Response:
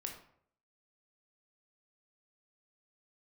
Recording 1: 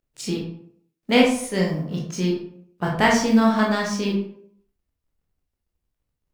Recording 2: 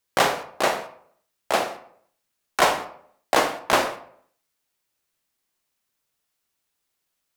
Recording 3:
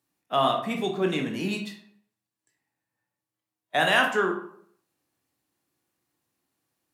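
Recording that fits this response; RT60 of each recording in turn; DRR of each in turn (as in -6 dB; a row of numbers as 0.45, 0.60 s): 3; 0.60, 0.60, 0.65 s; -3.0, 7.0, 2.0 dB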